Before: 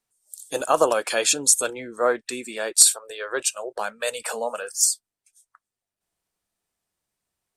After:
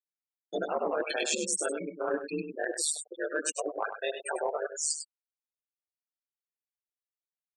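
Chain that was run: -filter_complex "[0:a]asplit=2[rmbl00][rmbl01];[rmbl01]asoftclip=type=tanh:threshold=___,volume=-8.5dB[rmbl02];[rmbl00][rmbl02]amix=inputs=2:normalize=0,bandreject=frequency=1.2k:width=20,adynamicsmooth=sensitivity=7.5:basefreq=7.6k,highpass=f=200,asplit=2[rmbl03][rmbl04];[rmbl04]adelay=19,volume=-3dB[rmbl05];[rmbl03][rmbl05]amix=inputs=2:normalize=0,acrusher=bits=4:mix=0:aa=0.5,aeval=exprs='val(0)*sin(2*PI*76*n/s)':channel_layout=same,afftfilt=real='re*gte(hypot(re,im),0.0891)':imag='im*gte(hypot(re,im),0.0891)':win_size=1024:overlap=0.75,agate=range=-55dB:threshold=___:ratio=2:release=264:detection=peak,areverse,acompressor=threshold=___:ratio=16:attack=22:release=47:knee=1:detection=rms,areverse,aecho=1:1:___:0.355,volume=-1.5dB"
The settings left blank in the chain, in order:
-18dB, -40dB, -28dB, 99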